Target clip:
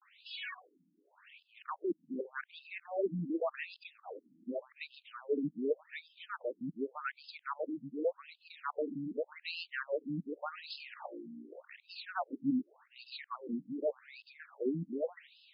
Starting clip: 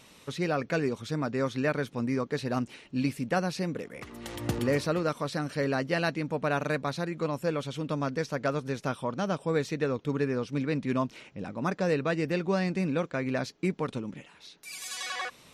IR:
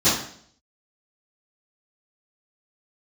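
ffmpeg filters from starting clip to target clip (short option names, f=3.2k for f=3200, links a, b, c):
-af "areverse,afftfilt=real='re*between(b*sr/1024,220*pow(3700/220,0.5+0.5*sin(2*PI*0.86*pts/sr))/1.41,220*pow(3700/220,0.5+0.5*sin(2*PI*0.86*pts/sr))*1.41)':imag='im*between(b*sr/1024,220*pow(3700/220,0.5+0.5*sin(2*PI*0.86*pts/sr))/1.41,220*pow(3700/220,0.5+0.5*sin(2*PI*0.86*pts/sr))*1.41)':win_size=1024:overlap=0.75,volume=-2dB"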